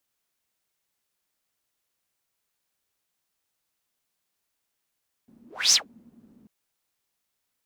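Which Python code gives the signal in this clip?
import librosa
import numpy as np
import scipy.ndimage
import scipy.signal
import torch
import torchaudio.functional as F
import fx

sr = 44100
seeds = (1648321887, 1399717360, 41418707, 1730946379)

y = fx.whoosh(sr, seeds[0], length_s=1.19, peak_s=0.45, rise_s=0.28, fall_s=0.14, ends_hz=230.0, peak_hz=6000.0, q=9.8, swell_db=37.5)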